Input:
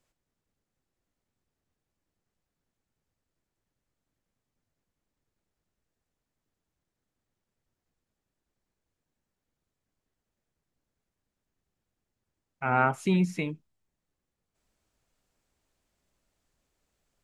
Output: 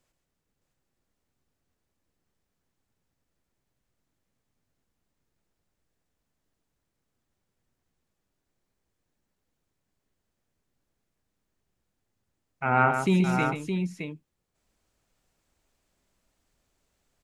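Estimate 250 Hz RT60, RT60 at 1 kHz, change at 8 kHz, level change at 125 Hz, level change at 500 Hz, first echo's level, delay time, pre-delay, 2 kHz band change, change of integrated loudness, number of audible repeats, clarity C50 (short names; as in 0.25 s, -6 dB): none, none, +3.5 dB, +3.5 dB, +3.0 dB, -7.0 dB, 0.134 s, none, +3.5 dB, +2.0 dB, 2, none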